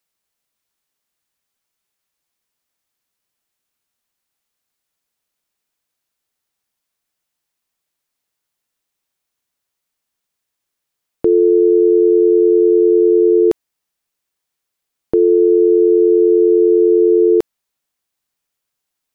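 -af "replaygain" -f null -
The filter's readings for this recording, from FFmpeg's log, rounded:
track_gain = -4.4 dB
track_peak = 0.413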